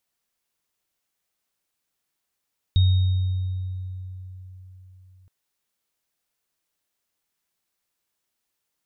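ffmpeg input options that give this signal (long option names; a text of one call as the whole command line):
ffmpeg -f lavfi -i "aevalsrc='0.224*pow(10,-3*t/3.97)*sin(2*PI*92.7*t)+0.0398*pow(10,-3*t/1.59)*sin(2*PI*3730*t)':duration=2.52:sample_rate=44100" out.wav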